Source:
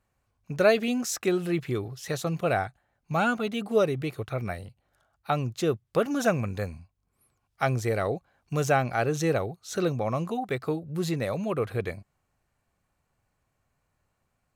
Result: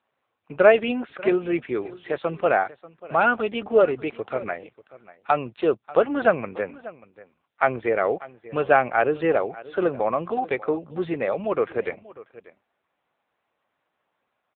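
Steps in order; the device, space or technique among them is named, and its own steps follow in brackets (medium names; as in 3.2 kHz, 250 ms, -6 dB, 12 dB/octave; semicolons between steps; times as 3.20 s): satellite phone (band-pass 350–3200 Hz; delay 589 ms -19 dB; trim +7.5 dB; AMR-NB 6.7 kbps 8 kHz)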